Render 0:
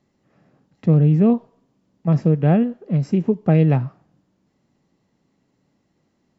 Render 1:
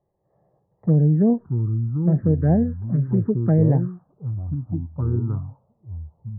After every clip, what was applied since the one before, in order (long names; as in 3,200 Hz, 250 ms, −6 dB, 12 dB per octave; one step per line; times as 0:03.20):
elliptic low-pass filter 1,700 Hz, stop band 40 dB
delay with pitch and tempo change per echo 339 ms, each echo −5 semitones, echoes 2, each echo −6 dB
phaser swept by the level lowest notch 250 Hz, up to 1,300 Hz, full sweep at −11.5 dBFS
level −1 dB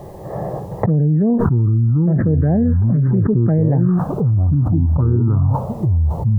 envelope flattener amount 100%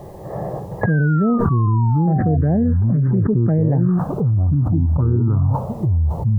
sound drawn into the spectrogram fall, 0:00.81–0:02.37, 690–1,700 Hz −28 dBFS
level −1.5 dB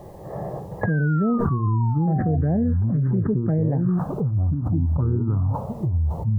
flanger 1.1 Hz, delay 3.5 ms, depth 1.5 ms, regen −86%